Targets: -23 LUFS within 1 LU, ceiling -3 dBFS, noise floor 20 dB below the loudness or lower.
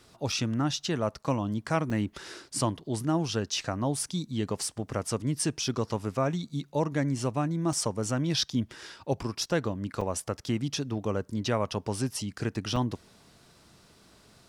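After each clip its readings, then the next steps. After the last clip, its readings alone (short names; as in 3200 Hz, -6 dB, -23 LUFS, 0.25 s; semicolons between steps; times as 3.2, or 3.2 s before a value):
dropouts 5; longest dropout 3.8 ms; loudness -30.5 LUFS; peak -13.0 dBFS; loudness target -23.0 LUFS
-> interpolate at 0.32/1.9/7.73/10.01/12.76, 3.8 ms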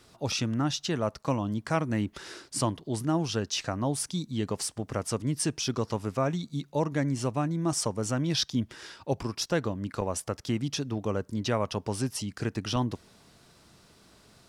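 dropouts 0; loudness -30.5 LUFS; peak -13.0 dBFS; loudness target -23.0 LUFS
-> gain +7.5 dB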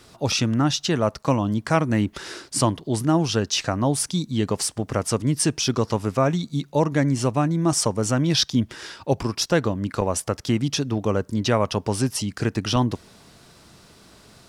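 loudness -23.0 LUFS; peak -5.5 dBFS; noise floor -52 dBFS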